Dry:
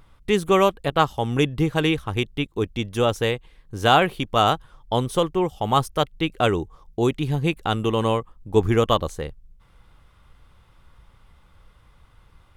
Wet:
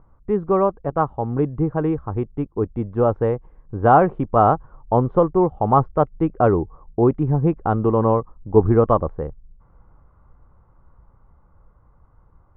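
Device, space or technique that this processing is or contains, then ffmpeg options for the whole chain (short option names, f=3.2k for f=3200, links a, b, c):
action camera in a waterproof case: -af "lowpass=f=1.2k:w=0.5412,lowpass=f=1.2k:w=1.3066,dynaudnorm=f=200:g=31:m=11.5dB" -ar 44100 -c:a aac -b:a 128k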